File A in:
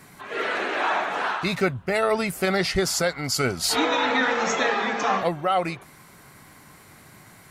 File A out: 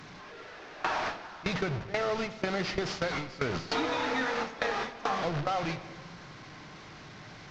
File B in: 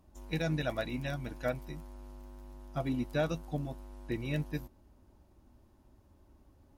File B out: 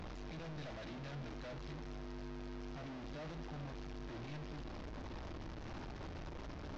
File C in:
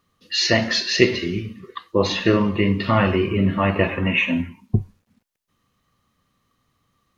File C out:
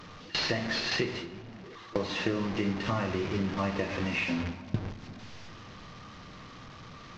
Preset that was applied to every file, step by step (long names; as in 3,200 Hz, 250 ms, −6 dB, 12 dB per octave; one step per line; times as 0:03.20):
linear delta modulator 32 kbit/s, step −19.5 dBFS
noise gate with hold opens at −14 dBFS
high-shelf EQ 3,700 Hz −8 dB
downward compressor 6 to 1, threshold −28 dBFS
rectangular room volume 1,300 cubic metres, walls mixed, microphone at 0.5 metres